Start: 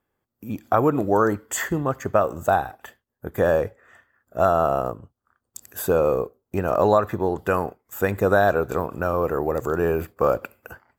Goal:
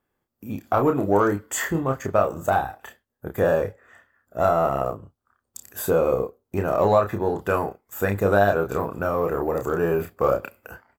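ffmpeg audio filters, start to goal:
-filter_complex "[0:a]asplit=2[a][b];[b]asoftclip=type=tanh:threshold=-18dB,volume=-9dB[c];[a][c]amix=inputs=2:normalize=0,asplit=2[d][e];[e]adelay=30,volume=-5dB[f];[d][f]amix=inputs=2:normalize=0,volume=-3.5dB"

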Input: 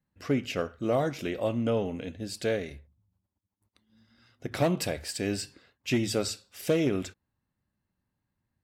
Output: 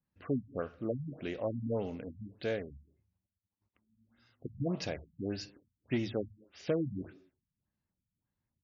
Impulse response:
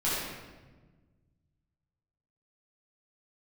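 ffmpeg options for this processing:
-filter_complex "[0:a]acrusher=bits=7:mode=log:mix=0:aa=0.000001,asplit=2[a][b];[1:a]atrim=start_sample=2205,afade=t=out:st=0.33:d=0.01,atrim=end_sample=14994[c];[b][c]afir=irnorm=-1:irlink=0,volume=-31dB[d];[a][d]amix=inputs=2:normalize=0,afftfilt=real='re*lt(b*sr/1024,210*pow(7200/210,0.5+0.5*sin(2*PI*1.7*pts/sr)))':imag='im*lt(b*sr/1024,210*pow(7200/210,0.5+0.5*sin(2*PI*1.7*pts/sr)))':win_size=1024:overlap=0.75,volume=-6dB"

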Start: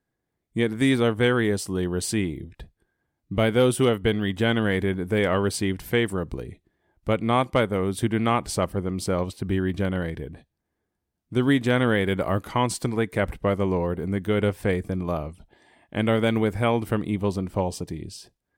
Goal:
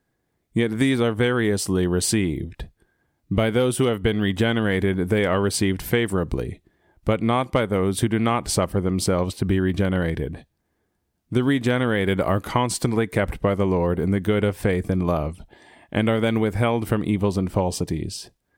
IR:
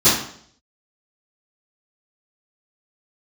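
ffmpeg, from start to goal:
-af "acompressor=threshold=-24dB:ratio=6,volume=7.5dB"

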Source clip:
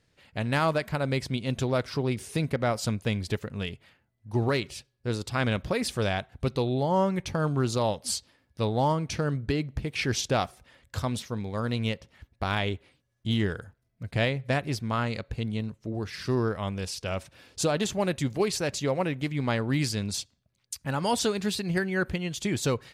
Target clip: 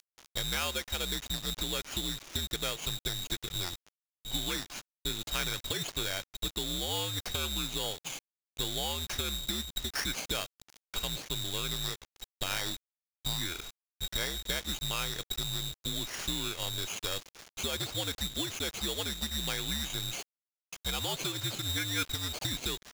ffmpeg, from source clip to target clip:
-filter_complex "[0:a]afftfilt=real='real(if(between(b,1,1012),(2*floor((b-1)/92)+1)*92-b,b),0)':imag='imag(if(between(b,1,1012),(2*floor((b-1)/92)+1)*92-b,b),0)*if(between(b,1,1012),-1,1)':win_size=2048:overlap=0.75,acrossover=split=570[a][b];[a]volume=27dB,asoftclip=hard,volume=-27dB[c];[b]acompressor=threshold=-33dB:ratio=16[d];[c][d]amix=inputs=2:normalize=0,highpass=f=42:p=1,acompressor=mode=upward:threshold=-52dB:ratio=2.5,adynamicequalizer=threshold=0.00224:dfrequency=460:dqfactor=3.1:tfrequency=460:tqfactor=3.1:attack=5:release=100:ratio=0.375:range=1.5:mode=boostabove:tftype=bell,aresample=11025,acrusher=bits=7:mix=0:aa=0.000001,aresample=44100,tiltshelf=f=970:g=-4,aeval=exprs='val(0)*sgn(sin(2*PI*1900*n/s))':c=same"

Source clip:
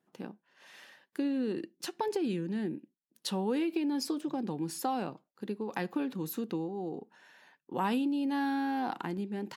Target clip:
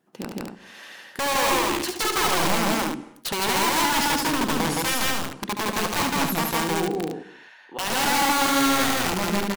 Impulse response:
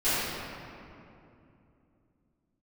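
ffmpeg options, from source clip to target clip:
-filter_complex "[0:a]asettb=1/sr,asplit=3[a][b][c];[a]atrim=end=6.984[d];[b]atrim=start=6.98:end=7.9,asetpts=PTS-STARTPTS,afade=t=in:d=0.004:c=qsin,afade=t=out:st=0.916:d=0.004:c=qsin,bandpass=f=2.1k:t=q:w=0.56:csg=0[e];[c]atrim=start=7.896[f];[d][e]acrossfade=d=0.004:c1=hsin:c2=qsin[g];[g][f]acrossfade=d=0.004:c1=qsin:c2=hsin,aeval=exprs='(mod(28.2*val(0)+1,2)-1)/28.2':c=same,asettb=1/sr,asplit=3[h][i][j];[h]atrim=end=1.484[k];[i]atrim=start=1.48:end=1.98,asetpts=PTS-STARTPTS,afade=t=in:d=0.004:c=qsin,afade=t=out:st=0.496:d=0.004:c=qsin,asplit=2[l][m];[m]adelay=14,volume=-5dB[n];[l][n]amix=inputs=2:normalize=0,atrim=end_sample=22050[o];[j]atrim=start=1.976[p];[k][o]acrossfade=d=0.004:c1=hsin:c2=qsin[q];[q][p]acrossfade=d=0.004:c1=qsin:c2=hsin,aecho=1:1:72.89|163.3|236.2:0.447|1|0.562,asplit=2[r][s];[1:a]atrim=start_sample=2205,atrim=end_sample=6615,asetrate=22491,aresample=44100[t];[s][t]afir=irnorm=-1:irlink=0,volume=-34.5dB[u];[r][u]amix=inputs=2:normalize=0,volume=8dB"

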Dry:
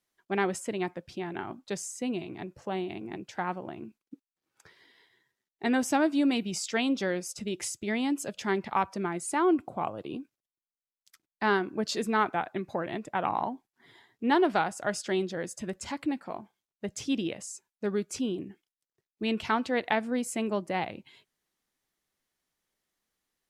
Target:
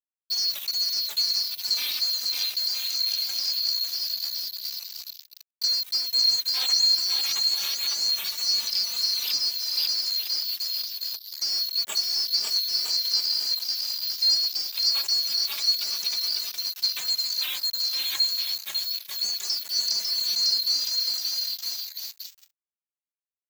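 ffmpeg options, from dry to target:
-filter_complex "[0:a]afftfilt=real='real(if(lt(b,736),b+184*(1-2*mod(floor(b/184),2)),b),0)':imag='imag(if(lt(b,736),b+184*(1-2*mod(floor(b/184),2)),b),0)':win_size=2048:overlap=0.75,tremolo=f=1.6:d=0.68,equalizer=f=4.8k:t=o:w=1.8:g=11.5,acrossover=split=560|5900[a][b][c];[a]acompressor=threshold=-56dB:ratio=4[d];[b]acompressor=threshold=-31dB:ratio=4[e];[c]acompressor=threshold=-35dB:ratio=4[f];[d][e][f]amix=inputs=3:normalize=0,asplit=2[g][h];[h]aecho=0:1:550|962.5|1272|1504|1678:0.631|0.398|0.251|0.158|0.1[i];[g][i]amix=inputs=2:normalize=0,acrusher=bits=5:mix=0:aa=0.5,highpass=f=300:p=1,highshelf=f=11k:g=9.5,acrossover=split=4900[j][k];[k]acompressor=threshold=-34dB:ratio=4:attack=1:release=60[l];[j][l]amix=inputs=2:normalize=0,asplit=2[m][n];[n]adelay=3.2,afreqshift=0.27[o];[m][o]amix=inputs=2:normalize=1,volume=7dB"

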